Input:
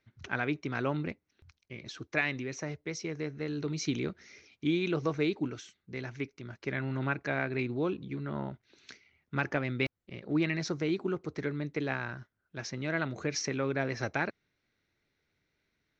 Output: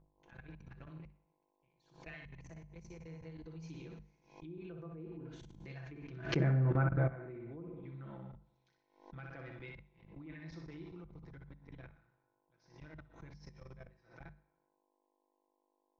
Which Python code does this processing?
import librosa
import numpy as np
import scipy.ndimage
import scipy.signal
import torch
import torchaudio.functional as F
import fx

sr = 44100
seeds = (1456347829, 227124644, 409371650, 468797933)

p1 = fx.doppler_pass(x, sr, speed_mps=16, closest_m=2.5, pass_at_s=6.52)
p2 = fx.dmg_buzz(p1, sr, base_hz=50.0, harmonics=22, level_db=-61.0, tilt_db=-7, odd_only=False)
p3 = fx.peak_eq(p2, sr, hz=160.0, db=9.0, octaves=0.35)
p4 = p3 + 0.67 * np.pad(p3, (int(6.0 * sr / 1000.0), 0))[:len(p3)]
p5 = p4 + fx.echo_feedback(p4, sr, ms=61, feedback_pct=44, wet_db=-6.0, dry=0)
p6 = fx.dynamic_eq(p5, sr, hz=330.0, q=4.1, threshold_db=-54.0, ratio=4.0, max_db=3)
p7 = fx.env_lowpass_down(p6, sr, base_hz=990.0, full_db=-38.5)
p8 = fx.rev_gated(p7, sr, seeds[0], gate_ms=450, shape='falling', drr_db=8.5)
p9 = fx.level_steps(p8, sr, step_db=18)
p10 = fx.hum_notches(p9, sr, base_hz=50, count=4)
p11 = fx.pre_swell(p10, sr, db_per_s=120.0)
y = p11 * librosa.db_to_amplitude(7.5)